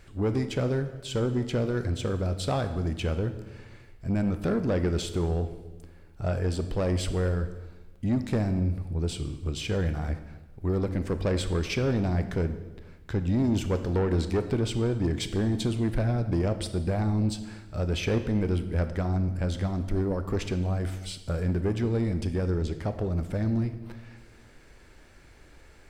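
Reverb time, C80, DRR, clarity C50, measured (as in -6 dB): 1.2 s, 13.0 dB, 9.5 dB, 11.0 dB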